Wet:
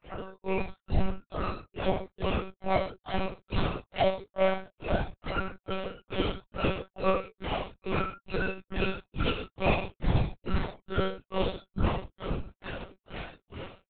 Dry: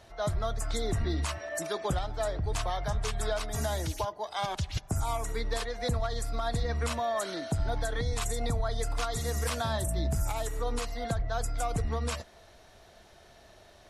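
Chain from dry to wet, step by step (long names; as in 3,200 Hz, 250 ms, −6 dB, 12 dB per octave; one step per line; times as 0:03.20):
time-frequency cells dropped at random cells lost 31%
repeating echo 526 ms, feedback 56%, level −9.5 dB
tape wow and flutter 26 cents
granular cloud 228 ms, grains 2.3 per second, spray 23 ms, pitch spread up and down by 0 semitones
dynamic equaliser 200 Hz, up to −5 dB, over −50 dBFS, Q 0.95
in parallel at −1.5 dB: downward compressor 4 to 1, threshold −49 dBFS, peak gain reduction 17.5 dB
on the sum: soft clipping −23.5 dBFS, distortion −22 dB
reverb whose tail is shaped and stops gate 170 ms falling, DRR −6.5 dB
formants moved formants −6 semitones
one-pitch LPC vocoder at 8 kHz 190 Hz
level +3.5 dB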